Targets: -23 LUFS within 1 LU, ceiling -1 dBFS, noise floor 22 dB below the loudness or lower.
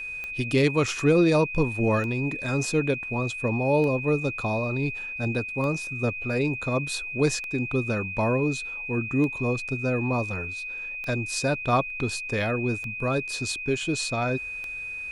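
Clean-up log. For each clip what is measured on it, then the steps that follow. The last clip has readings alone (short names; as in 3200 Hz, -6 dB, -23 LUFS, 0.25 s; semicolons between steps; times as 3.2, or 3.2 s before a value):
clicks 9; steady tone 2500 Hz; tone level -32 dBFS; loudness -26.0 LUFS; peak -10.0 dBFS; loudness target -23.0 LUFS
-> de-click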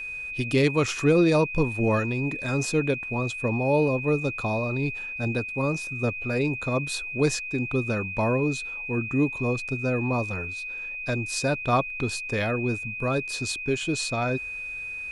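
clicks 0; steady tone 2500 Hz; tone level -32 dBFS
-> notch 2500 Hz, Q 30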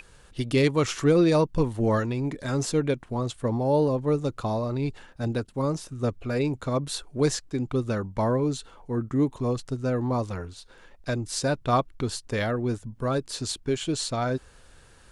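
steady tone none; loudness -27.0 LUFS; peak -10.0 dBFS; loudness target -23.0 LUFS
-> gain +4 dB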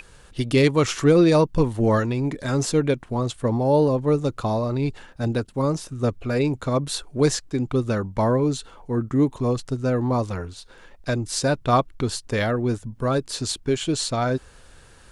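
loudness -23.0 LUFS; peak -6.0 dBFS; noise floor -49 dBFS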